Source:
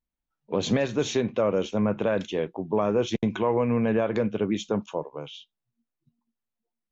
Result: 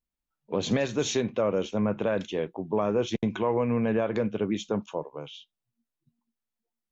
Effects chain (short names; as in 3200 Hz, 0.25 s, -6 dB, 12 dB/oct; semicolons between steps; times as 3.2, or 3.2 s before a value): 0.71–1.3 high shelf 5300 Hz +9 dB; gain -2 dB